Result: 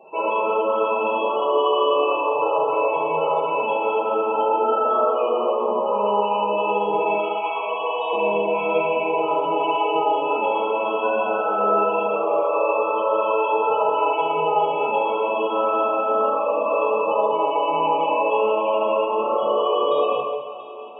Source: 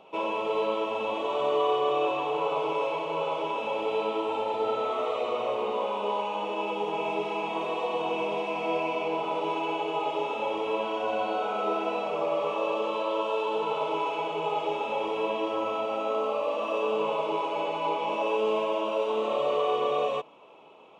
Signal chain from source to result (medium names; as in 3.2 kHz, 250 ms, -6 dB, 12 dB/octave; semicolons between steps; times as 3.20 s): 7.14–8.13 s: high-pass 630 Hz 12 dB/octave; loudest bins only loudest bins 32; feedback echo behind a high-pass 684 ms, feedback 58%, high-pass 4.3 kHz, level -11.5 dB; reverberation, pre-delay 3 ms, DRR -4 dB; trim +4 dB